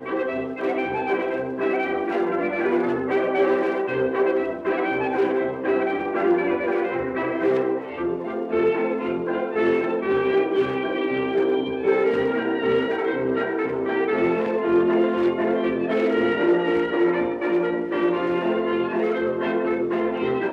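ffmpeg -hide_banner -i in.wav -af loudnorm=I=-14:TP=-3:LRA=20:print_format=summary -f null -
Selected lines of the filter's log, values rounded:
Input Integrated:    -22.8 LUFS
Input True Peak:      -9.1 dBTP
Input LRA:             1.7 LU
Input Threshold:     -32.8 LUFS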